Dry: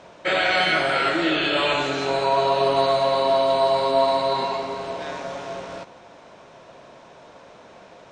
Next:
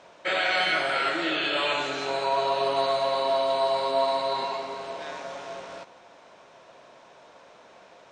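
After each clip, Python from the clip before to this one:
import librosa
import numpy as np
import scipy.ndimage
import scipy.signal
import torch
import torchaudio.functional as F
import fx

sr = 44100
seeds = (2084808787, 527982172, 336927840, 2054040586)

y = fx.low_shelf(x, sr, hz=300.0, db=-10.0)
y = y * librosa.db_to_amplitude(-3.5)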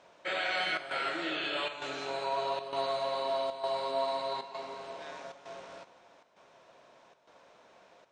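y = fx.chopper(x, sr, hz=1.1, depth_pct=65, duty_pct=85)
y = y * librosa.db_to_amplitude(-7.5)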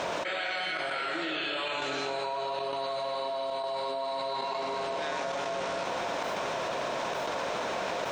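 y = fx.env_flatten(x, sr, amount_pct=100)
y = y * librosa.db_to_amplitude(-3.5)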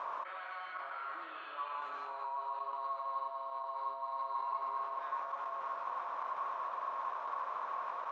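y = fx.bandpass_q(x, sr, hz=1100.0, q=8.8)
y = y * librosa.db_to_amplitude(4.0)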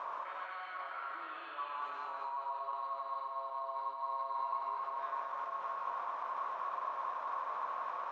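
y = x + 10.0 ** (-5.0 / 20.0) * np.pad(x, (int(221 * sr / 1000.0), 0))[:len(x)]
y = y * librosa.db_to_amplitude(-1.0)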